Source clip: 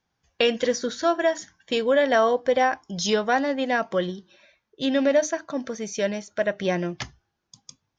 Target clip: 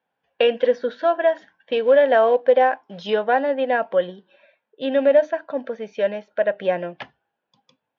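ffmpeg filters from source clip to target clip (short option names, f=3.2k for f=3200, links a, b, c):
-filter_complex "[0:a]asettb=1/sr,asplit=3[a][b][c];[a]atrim=end=1.834[d];[b]atrim=start=1.83:end=3.02,asetpts=PTS-STARTPTS,afade=t=in:d=0.004:c=qsin,afade=t=out:st=1.186:d=0.004:c=qsin,acrusher=bits=5:mode=log:mix=0:aa=0.000001[e];[c]atrim=start=3.016[f];[d][e]acrossfade=d=0.004:c1=hsin:c2=qsin[g];[g][f]acrossfade=d=0.004:c1=qsin:c2=hsin,highpass=340,equalizer=f=350:t=q:w=4:g=-8,equalizer=f=520:t=q:w=4:g=4,equalizer=f=1.2k:t=q:w=4:g=-9,equalizer=f=2.1k:t=q:w=4:g=-8,lowpass=f=2.7k:w=0.5412,lowpass=f=2.7k:w=1.3066,volume=4.5dB"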